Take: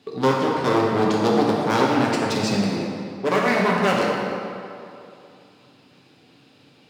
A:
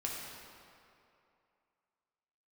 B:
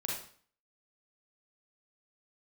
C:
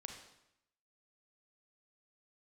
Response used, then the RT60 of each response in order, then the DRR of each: A; 2.7, 0.50, 0.80 s; -3.5, -3.5, 3.0 dB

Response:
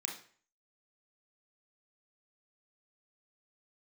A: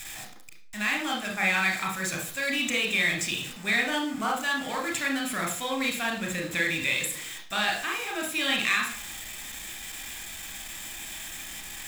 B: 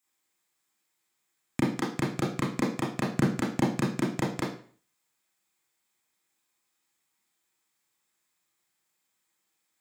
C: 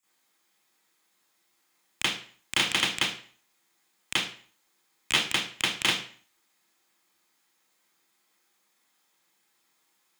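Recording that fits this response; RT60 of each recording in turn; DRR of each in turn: A; 0.45, 0.45, 0.45 s; 0.0, -6.0, -15.0 dB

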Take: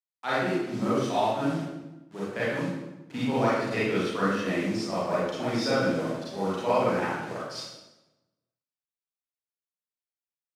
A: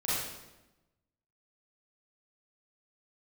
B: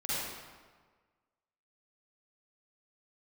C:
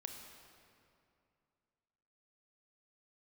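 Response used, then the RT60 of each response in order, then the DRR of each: A; 1.0, 1.5, 2.5 s; -10.5, -11.0, 3.0 dB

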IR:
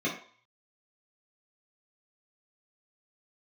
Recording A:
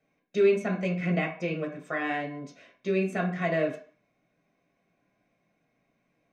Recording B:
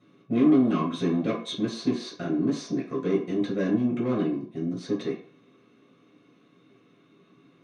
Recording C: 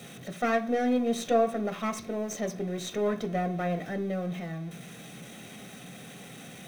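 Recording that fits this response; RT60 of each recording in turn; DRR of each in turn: B; 0.50, 0.50, 0.50 s; -0.5, -7.0, 5.5 dB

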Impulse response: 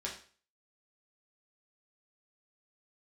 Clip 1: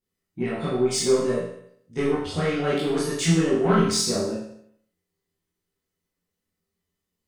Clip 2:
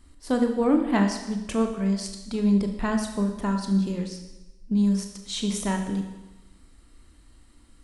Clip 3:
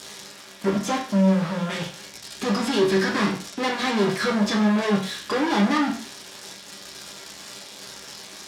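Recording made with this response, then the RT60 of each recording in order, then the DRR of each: 3; 0.70, 1.0, 0.40 s; -9.5, 4.5, -3.5 dB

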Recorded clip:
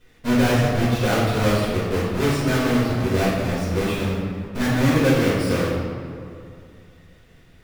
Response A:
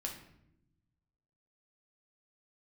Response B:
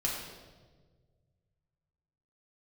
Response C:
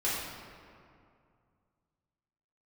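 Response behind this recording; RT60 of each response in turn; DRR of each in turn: C; not exponential, 1.5 s, 2.4 s; 0.0, -4.0, -9.5 dB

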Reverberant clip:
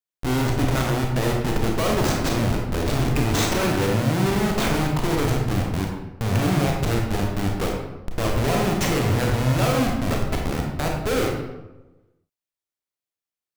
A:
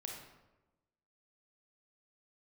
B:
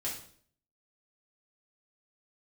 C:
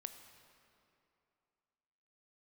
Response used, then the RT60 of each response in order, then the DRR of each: A; 1.1, 0.55, 2.7 s; -0.5, -6.5, 8.0 dB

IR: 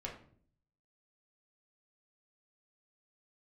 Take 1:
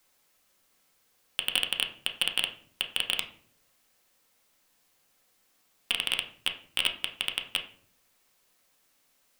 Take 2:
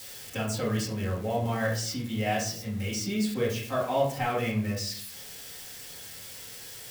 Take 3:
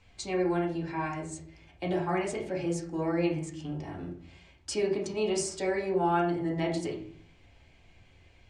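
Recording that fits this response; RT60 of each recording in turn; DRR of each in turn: 3; 0.55, 0.55, 0.55 s; 2.5, -7.5, -2.5 dB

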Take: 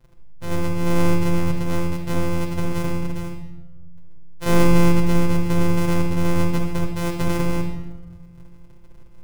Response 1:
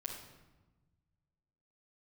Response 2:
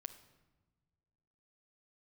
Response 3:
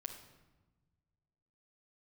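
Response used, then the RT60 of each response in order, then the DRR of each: 1; 1.2 s, not exponential, 1.2 s; -3.0, 8.0, 2.5 dB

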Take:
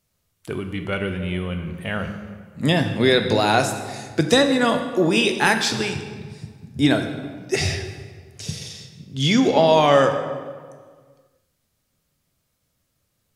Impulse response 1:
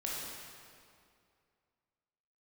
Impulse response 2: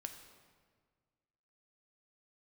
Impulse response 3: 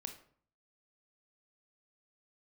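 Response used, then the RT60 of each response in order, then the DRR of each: 2; 2.4, 1.7, 0.55 s; -5.0, 5.5, 5.5 dB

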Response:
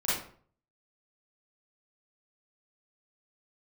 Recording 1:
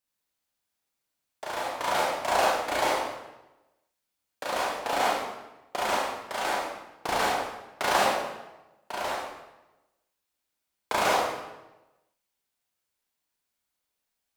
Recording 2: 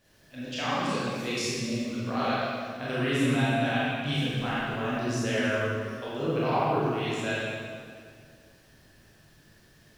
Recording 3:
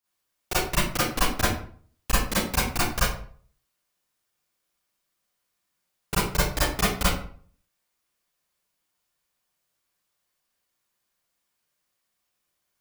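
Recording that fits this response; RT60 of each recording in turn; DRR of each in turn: 3; 1.0, 2.2, 0.50 s; -5.0, -9.5, -10.5 dB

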